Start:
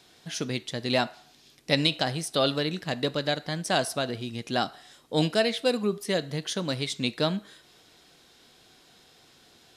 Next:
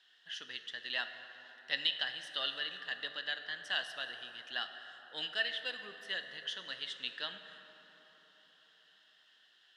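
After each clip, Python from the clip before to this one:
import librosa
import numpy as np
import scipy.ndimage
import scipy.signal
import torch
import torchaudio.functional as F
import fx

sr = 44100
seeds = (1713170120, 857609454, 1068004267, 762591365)

y = fx.double_bandpass(x, sr, hz=2300.0, octaves=0.72)
y = fx.rev_plate(y, sr, seeds[0], rt60_s=4.6, hf_ratio=0.45, predelay_ms=0, drr_db=7.5)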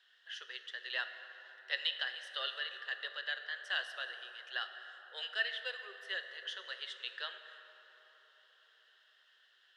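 y = scipy.signal.sosfilt(scipy.signal.cheby1(6, 6, 370.0, 'highpass', fs=sr, output='sos'), x)
y = F.gain(torch.from_numpy(y), 1.5).numpy()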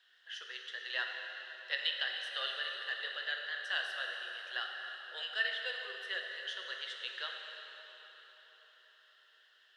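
y = fx.rev_plate(x, sr, seeds[1], rt60_s=3.7, hf_ratio=1.0, predelay_ms=0, drr_db=2.5)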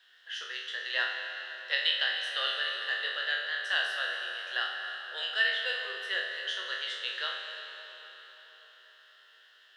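y = fx.spec_trails(x, sr, decay_s=0.57)
y = F.gain(torch.from_numpy(y), 4.5).numpy()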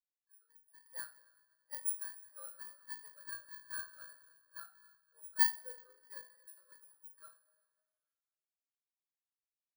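y = fx.bit_reversed(x, sr, seeds[2], block=16)
y = fx.spectral_expand(y, sr, expansion=2.5)
y = F.gain(torch.from_numpy(y), -2.5).numpy()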